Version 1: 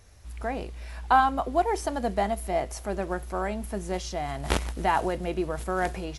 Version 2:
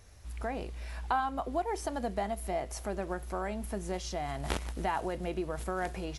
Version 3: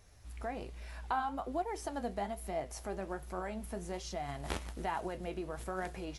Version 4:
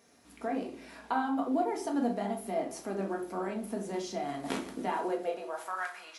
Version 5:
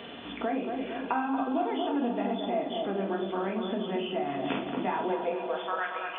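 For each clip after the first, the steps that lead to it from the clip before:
compression 2:1, threshold -32 dBFS, peak gain reduction 9.5 dB; trim -1.5 dB
flange 1.2 Hz, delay 4.5 ms, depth 8.3 ms, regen +63%
high-pass sweep 270 Hz -> 1.3 kHz, 4.90–5.87 s; simulated room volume 400 m³, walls furnished, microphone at 1.7 m
knee-point frequency compression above 2.4 kHz 4:1; feedback echo behind a low-pass 228 ms, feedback 47%, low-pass 1.5 kHz, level -5.5 dB; three bands compressed up and down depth 70%; trim +1.5 dB

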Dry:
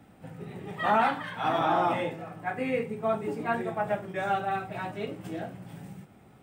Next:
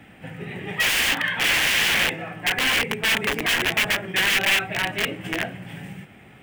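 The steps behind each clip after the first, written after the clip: integer overflow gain 27 dB; high-order bell 2.3 kHz +11 dB 1.2 oct; trim +6 dB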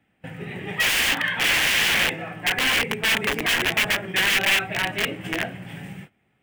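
gate -41 dBFS, range -20 dB

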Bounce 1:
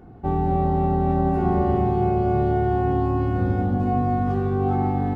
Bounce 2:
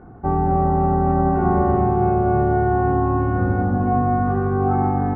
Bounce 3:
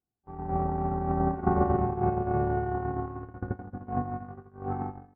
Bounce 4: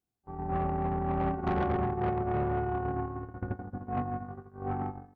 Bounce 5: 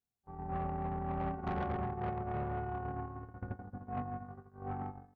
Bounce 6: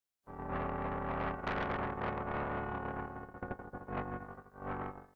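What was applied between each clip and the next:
resonant low-pass 1.4 kHz, resonance Q 2; trim +2 dB
gate -15 dBFS, range -50 dB
saturation -25.5 dBFS, distortion -10 dB; trim +1 dB
peaking EQ 330 Hz -12 dB 0.23 oct; trim -6 dB
spectral peaks clipped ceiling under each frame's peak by 18 dB

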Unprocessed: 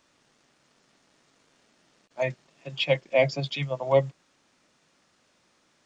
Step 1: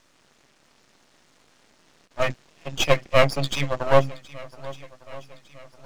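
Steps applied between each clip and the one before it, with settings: half-wave rectifier; shuffle delay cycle 1204 ms, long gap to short 1.5:1, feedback 42%, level -19.5 dB; trim +8.5 dB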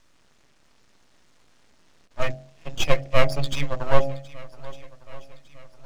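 bass shelf 93 Hz +11.5 dB; de-hum 45.67 Hz, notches 18; trim -3.5 dB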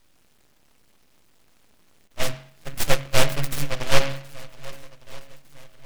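delay time shaken by noise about 1.8 kHz, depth 0.22 ms

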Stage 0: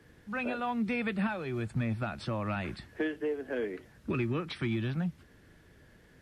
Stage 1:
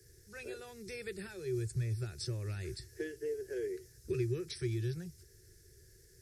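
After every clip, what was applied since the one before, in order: FFT filter 120 Hz 0 dB, 260 Hz -27 dB, 380 Hz +4 dB, 630 Hz -21 dB, 1.1 kHz -25 dB, 1.7 kHz -9 dB, 3.1 kHz -14 dB, 5.3 kHz +11 dB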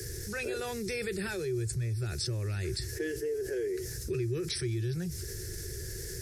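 level flattener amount 70%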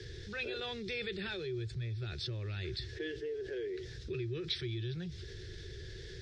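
four-pole ladder low-pass 3.8 kHz, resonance 70%; trim +5.5 dB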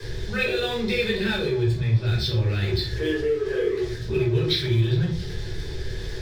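crossover distortion -55 dBFS; simulated room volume 390 m³, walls furnished, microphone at 5.1 m; trim +6.5 dB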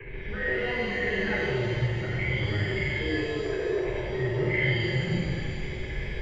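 knee-point frequency compression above 1.7 kHz 4:1; transient shaper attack -11 dB, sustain +7 dB; pitch-shifted reverb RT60 2 s, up +7 st, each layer -8 dB, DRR -1.5 dB; trim -7.5 dB

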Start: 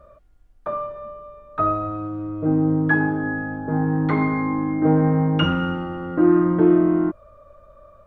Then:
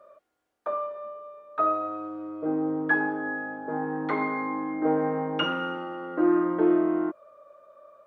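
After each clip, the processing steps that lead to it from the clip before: Chebyshev high-pass 430 Hz, order 2; trim -2.5 dB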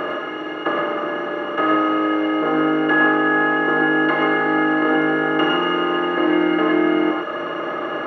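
spectral levelling over time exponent 0.2; reverb removal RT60 0.78 s; gated-style reverb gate 140 ms rising, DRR 1 dB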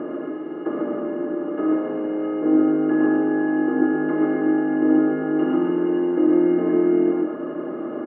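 band-pass filter 260 Hz, Q 2.3; delay 142 ms -4 dB; trim +4.5 dB

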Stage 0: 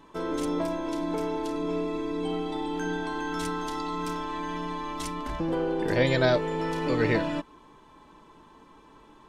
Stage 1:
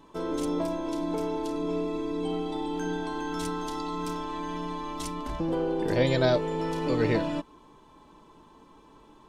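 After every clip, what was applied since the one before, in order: peaking EQ 1.8 kHz -5.5 dB 1.1 oct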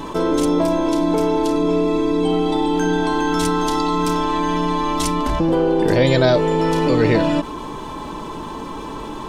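level flattener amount 50%; trim +7.5 dB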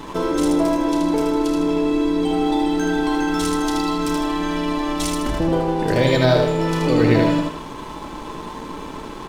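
feedback delay 78 ms, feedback 43%, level -3.5 dB; crossover distortion -36.5 dBFS; trim -1.5 dB

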